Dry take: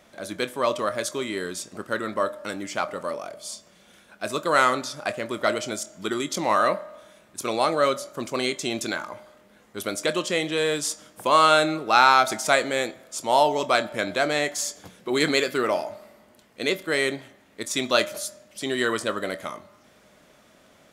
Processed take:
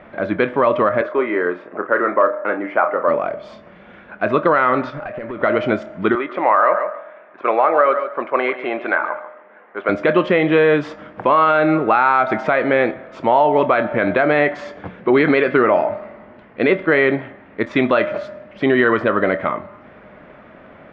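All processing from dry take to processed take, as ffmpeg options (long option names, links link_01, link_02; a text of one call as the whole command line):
ffmpeg -i in.wav -filter_complex "[0:a]asettb=1/sr,asplit=3[link_01][link_02][link_03];[link_01]atrim=end=1.014[link_04];[link_02]atrim=start=1.01:end=3.08,asetpts=PTS-STARTPTS,afade=type=in:duration=0.004:curve=qsin,afade=type=out:start_time=2.066:duration=0.004:curve=qsin,asoftclip=type=hard:threshold=-15dB,acrossover=split=310 2300:gain=0.0794 1 0.126[link_05][link_06][link_07];[link_05][link_06][link_07]amix=inputs=3:normalize=0,asplit=2[link_08][link_09];[link_09]adelay=34,volume=-9dB[link_10];[link_08][link_10]amix=inputs=2:normalize=0,atrim=end_sample=91287[link_11];[link_03]atrim=start=3.076[link_12];[link_04][link_11]acrossfade=duration=0.004:curve1=hsin:curve2=qsin[link_13];[link_13][link_12]acrossfade=duration=0.004:curve1=qsin:curve2=hsin,asettb=1/sr,asplit=3[link_14][link_15][link_16];[link_14]atrim=end=4.904[link_17];[link_15]atrim=start=4.9:end=5.43,asetpts=PTS-STARTPTS,afade=type=in:duration=0.004:curve=qsin,afade=type=out:start_time=0.526:duration=0.004:curve=qsin,acompressor=threshold=-35dB:ratio=16:attack=3.2:release=140:knee=1:detection=peak,asoftclip=type=hard:threshold=-36.5dB[link_18];[link_16]atrim=start=5.426[link_19];[link_17][link_18]acrossfade=duration=0.004:curve1=hsin:curve2=qsin[link_20];[link_20][link_19]acrossfade=duration=0.004:curve1=qsin:curve2=hsin,asettb=1/sr,asplit=3[link_21][link_22][link_23];[link_21]atrim=end=6.154[link_24];[link_22]atrim=start=6.15:end=9.89,asetpts=PTS-STARTPTS,afade=type=in:duration=0.004:curve=qsin,afade=type=out:start_time=3.736:duration=0.004:curve=qsin,highpass=570,lowpass=2100,aecho=1:1:141|282:0.224|0.0403,atrim=end_sample=164934[link_25];[link_23]atrim=start=9.886[link_26];[link_24][link_25]acrossfade=duration=0.004:curve1=hsin:curve2=qsin[link_27];[link_27][link_26]acrossfade=duration=0.004:curve1=qsin:curve2=hsin,lowpass=frequency=2200:width=0.5412,lowpass=frequency=2200:width=1.3066,acompressor=threshold=-22dB:ratio=6,alimiter=level_in=17dB:limit=-1dB:release=50:level=0:latency=1,volume=-3dB" out.wav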